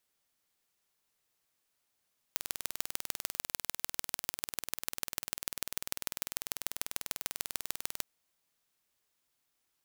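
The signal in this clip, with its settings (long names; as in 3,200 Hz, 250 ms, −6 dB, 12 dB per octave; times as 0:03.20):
impulse train 20.2 per second, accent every 3, −4 dBFS 5.69 s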